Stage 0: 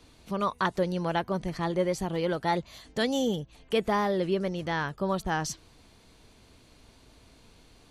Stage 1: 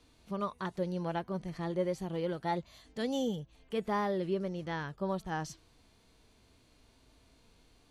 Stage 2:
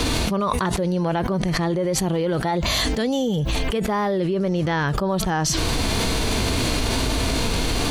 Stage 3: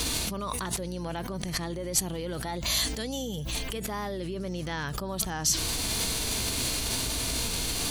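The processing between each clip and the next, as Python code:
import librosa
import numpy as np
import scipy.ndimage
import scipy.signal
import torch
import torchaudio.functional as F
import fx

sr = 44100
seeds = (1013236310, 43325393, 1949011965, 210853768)

y1 = fx.hpss(x, sr, part='percussive', gain_db=-8)
y1 = y1 * librosa.db_to_amplitude(-5.0)
y2 = fx.env_flatten(y1, sr, amount_pct=100)
y2 = y2 * librosa.db_to_amplitude(6.0)
y3 = F.preemphasis(torch.from_numpy(y2), 0.8).numpy()
y3 = fx.add_hum(y3, sr, base_hz=60, snr_db=11)
y3 = y3 * librosa.db_to_amplitude(1.0)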